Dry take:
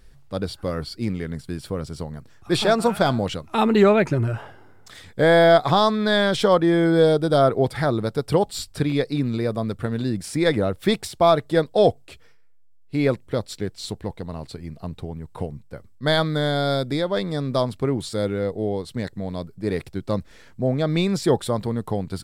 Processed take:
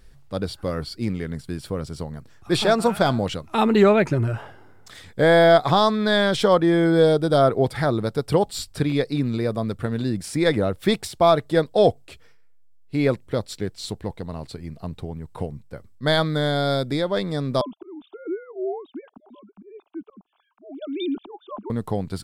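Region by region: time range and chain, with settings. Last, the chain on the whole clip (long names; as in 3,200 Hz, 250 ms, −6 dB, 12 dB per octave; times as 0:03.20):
0:17.61–0:21.70: three sine waves on the formant tracks + volume swells 479 ms + phaser with its sweep stopped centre 510 Hz, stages 6
whole clip: no processing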